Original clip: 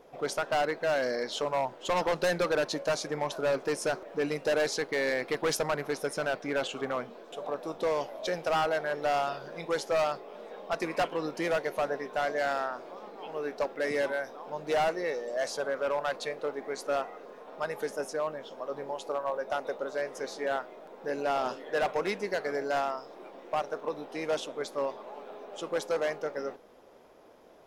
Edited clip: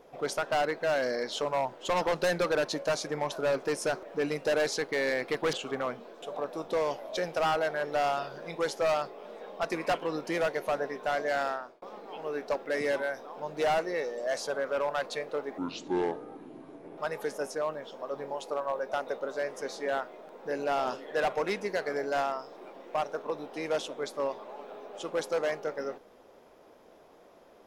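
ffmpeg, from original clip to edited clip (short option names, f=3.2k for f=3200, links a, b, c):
-filter_complex "[0:a]asplit=5[a][b][c][d][e];[a]atrim=end=5.532[f];[b]atrim=start=6.628:end=12.92,asetpts=PTS-STARTPTS,afade=t=out:st=5.952:d=0.34[g];[c]atrim=start=12.92:end=16.684,asetpts=PTS-STARTPTS,afade=t=in:d=0.004:c=hsin[h];[d]atrim=start=16.68:end=17.56,asetpts=PTS-STARTPTS,asetrate=27783,aresample=44100[i];[e]atrim=start=17.556[j];[g][h]concat=n=2:v=0:a=1[k];[f][k]acrossfade=d=0.004:c1=hsin:c2=hsin[l];[l][i]acrossfade=d=0.004:c1=hsin:c2=hsin[m];[m][j]acrossfade=d=0.004:c1=hsin:c2=hsin"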